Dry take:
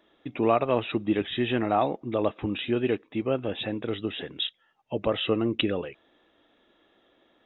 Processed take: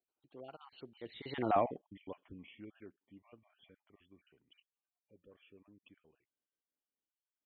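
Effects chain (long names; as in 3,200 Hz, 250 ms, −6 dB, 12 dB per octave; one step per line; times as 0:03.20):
time-frequency cells dropped at random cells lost 36%
source passing by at 0:01.52, 43 m/s, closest 4.1 metres
level −4.5 dB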